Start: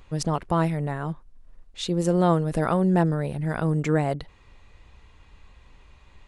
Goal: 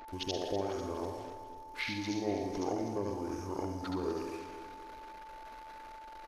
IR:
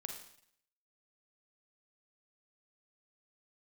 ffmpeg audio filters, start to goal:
-filter_complex "[0:a]asplit=2[s0][s1];[s1]aemphasis=mode=production:type=bsi[s2];[1:a]atrim=start_sample=2205,adelay=78[s3];[s2][s3]afir=irnorm=-1:irlink=0,volume=1[s4];[s0][s4]amix=inputs=2:normalize=0,aeval=exprs='0.473*(cos(1*acos(clip(val(0)/0.473,-1,1)))-cos(1*PI/2))+0.0106*(cos(3*acos(clip(val(0)/0.473,-1,1)))-cos(3*PI/2))':c=same,acrusher=bits=7:mix=0:aa=0.5,acompressor=threshold=0.02:ratio=2.5,lowshelf=f=380:t=q:w=1.5:g=-10,bandreject=f=90.98:t=h:w=4,bandreject=f=181.96:t=h:w=4,bandreject=f=272.94:t=h:w=4,bandreject=f=363.92:t=h:w=4,bandreject=f=454.9:t=h:w=4,bandreject=f=545.88:t=h:w=4,bandreject=f=636.86:t=h:w=4,bandreject=f=727.84:t=h:w=4,bandreject=f=818.82:t=h:w=4,bandreject=f=909.8:t=h:w=4,bandreject=f=1000.78:t=h:w=4,bandreject=f=1091.76:t=h:w=4,bandreject=f=1182.74:t=h:w=4,bandreject=f=1273.72:t=h:w=4,bandreject=f=1364.7:t=h:w=4,bandreject=f=1455.68:t=h:w=4,bandreject=f=1546.66:t=h:w=4,bandreject=f=1637.64:t=h:w=4,bandreject=f=1728.62:t=h:w=4,bandreject=f=1819.6:t=h:w=4,bandreject=f=1910.58:t=h:w=4,bandreject=f=2001.56:t=h:w=4,bandreject=f=2092.54:t=h:w=4,bandreject=f=2183.52:t=h:w=4,bandreject=f=2274.5:t=h:w=4,bandreject=f=2365.48:t=h:w=4,bandreject=f=2456.46:t=h:w=4,bandreject=f=2547.44:t=h:w=4,bandreject=f=2638.42:t=h:w=4,bandreject=f=2729.4:t=h:w=4,bandreject=f=2820.38:t=h:w=4,bandreject=f=2911.36:t=h:w=4,bandreject=f=3002.34:t=h:w=4,bandreject=f=3093.32:t=h:w=4,bandreject=f=3184.3:t=h:w=4,bandreject=f=3275.28:t=h:w=4,bandreject=f=3366.26:t=h:w=4,bandreject=f=3457.24:t=h:w=4,bandreject=f=3548.22:t=h:w=4,asetrate=26222,aresample=44100,atempo=1.68179,aecho=1:1:247|494|741|988|1235:0.251|0.128|0.0653|0.0333|0.017,aeval=exprs='val(0)+0.00447*sin(2*PI*880*n/s)':c=same"

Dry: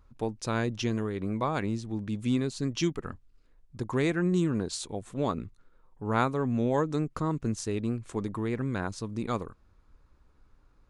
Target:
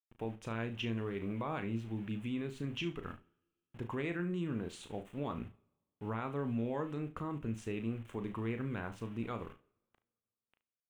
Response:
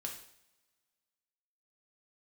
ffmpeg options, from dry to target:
-filter_complex "[0:a]aeval=exprs='val(0)*gte(abs(val(0)),0.00447)':c=same,highshelf=f=3700:t=q:w=3:g=-8.5,alimiter=limit=0.075:level=0:latency=1:release=68,aecho=1:1:35|72:0.376|0.15,asplit=2[s0][s1];[1:a]atrim=start_sample=2205,asetrate=37926,aresample=44100[s2];[s1][s2]afir=irnorm=-1:irlink=0,volume=0.168[s3];[s0][s3]amix=inputs=2:normalize=0,volume=0.422"

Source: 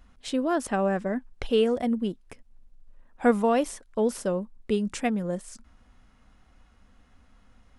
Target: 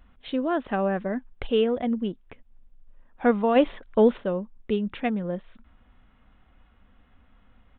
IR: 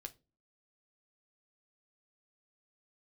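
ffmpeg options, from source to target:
-filter_complex "[0:a]asplit=3[s0][s1][s2];[s0]afade=t=out:st=3.55:d=0.02[s3];[s1]acontrast=75,afade=t=in:st=3.55:d=0.02,afade=t=out:st=4.16:d=0.02[s4];[s2]afade=t=in:st=4.16:d=0.02[s5];[s3][s4][s5]amix=inputs=3:normalize=0,aresample=8000,aresample=44100"

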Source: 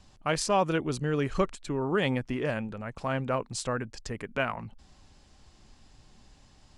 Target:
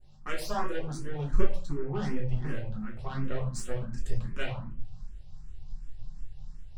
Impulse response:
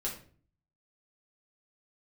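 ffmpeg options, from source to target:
-filter_complex "[0:a]aeval=exprs='val(0)+0.00282*(sin(2*PI*50*n/s)+sin(2*PI*2*50*n/s)/2+sin(2*PI*3*50*n/s)/3+sin(2*PI*4*50*n/s)/4+sin(2*PI*5*50*n/s)/5)':c=same,asubboost=boost=7.5:cutoff=110,aeval=exprs='0.282*(cos(1*acos(clip(val(0)/0.282,-1,1)))-cos(1*PI/2))+0.0447*(cos(6*acos(clip(val(0)/0.282,-1,1)))-cos(6*PI/2))':c=same,adynamicequalizer=threshold=0.00501:dfrequency=3300:dqfactor=0.74:tfrequency=3300:tqfactor=0.74:attack=5:release=100:ratio=0.375:range=1.5:mode=cutabove:tftype=bell[s0];[1:a]atrim=start_sample=2205[s1];[s0][s1]afir=irnorm=-1:irlink=0,asplit=2[s2][s3];[s3]afreqshift=2.7[s4];[s2][s4]amix=inputs=2:normalize=1,volume=0.473"

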